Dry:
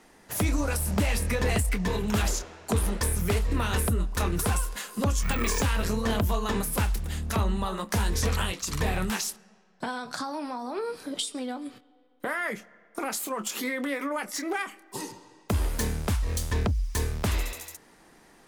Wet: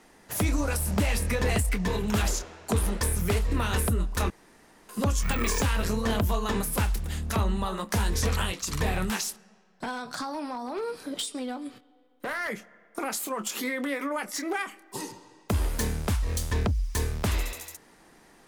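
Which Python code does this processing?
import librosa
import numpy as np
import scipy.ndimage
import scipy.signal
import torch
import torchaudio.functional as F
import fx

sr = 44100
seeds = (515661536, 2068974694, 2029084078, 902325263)

y = fx.clip_hard(x, sr, threshold_db=-26.5, at=(9.23, 12.49))
y = fx.edit(y, sr, fx.room_tone_fill(start_s=4.3, length_s=0.59), tone=tone)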